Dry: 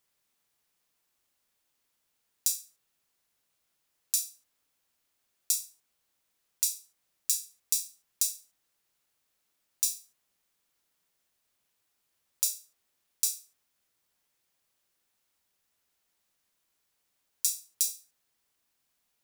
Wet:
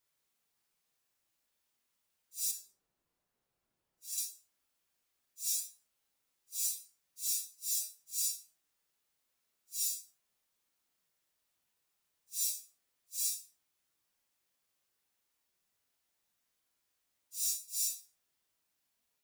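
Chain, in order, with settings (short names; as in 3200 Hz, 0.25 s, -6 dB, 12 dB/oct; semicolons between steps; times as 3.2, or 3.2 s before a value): phase scrambler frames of 0.2 s; 2.51–4.18 tilt shelf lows +7.5 dB, about 1300 Hz; gain -4 dB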